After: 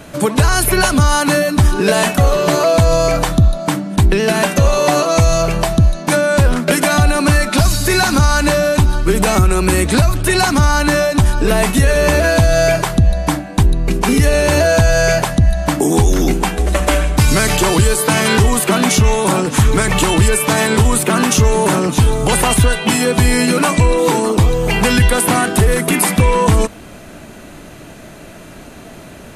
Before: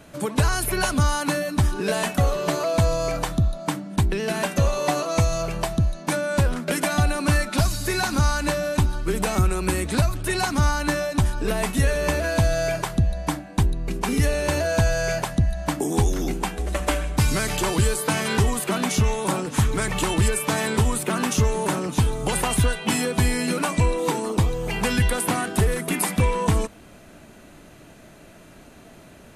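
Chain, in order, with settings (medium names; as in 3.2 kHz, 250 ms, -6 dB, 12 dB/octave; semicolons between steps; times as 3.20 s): loudness maximiser +13.5 dB; trim -2 dB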